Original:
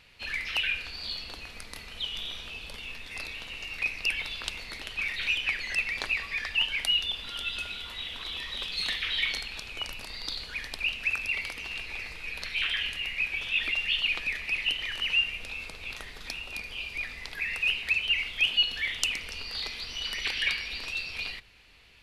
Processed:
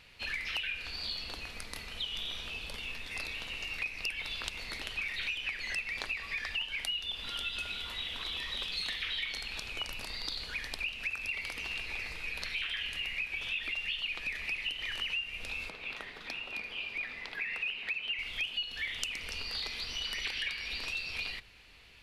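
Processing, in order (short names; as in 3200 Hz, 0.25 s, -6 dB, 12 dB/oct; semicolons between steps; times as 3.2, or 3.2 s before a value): 15.69–18.19 three-band isolator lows -14 dB, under 150 Hz, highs -13 dB, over 3800 Hz; compressor 6:1, threshold -33 dBFS, peak gain reduction 13 dB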